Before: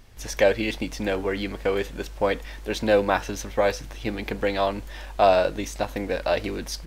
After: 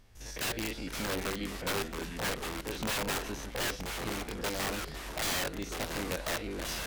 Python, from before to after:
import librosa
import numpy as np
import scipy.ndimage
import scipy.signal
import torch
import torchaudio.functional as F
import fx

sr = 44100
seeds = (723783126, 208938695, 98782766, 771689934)

y = fx.spec_steps(x, sr, hold_ms=50)
y = (np.mod(10.0 ** (20.0 / 20.0) * y + 1.0, 2.0) - 1.0) / 10.0 ** (20.0 / 20.0)
y = fx.echo_pitch(y, sr, ms=440, semitones=-3, count=3, db_per_echo=-6.0)
y = y * 10.0 ** (-7.5 / 20.0)